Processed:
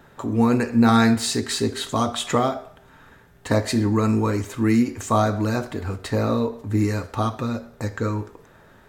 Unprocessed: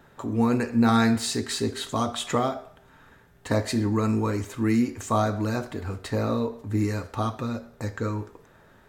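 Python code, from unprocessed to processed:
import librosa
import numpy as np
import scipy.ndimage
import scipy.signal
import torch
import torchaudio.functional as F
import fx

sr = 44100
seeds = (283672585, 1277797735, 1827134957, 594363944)

y = fx.end_taper(x, sr, db_per_s=290.0)
y = y * 10.0 ** (4.0 / 20.0)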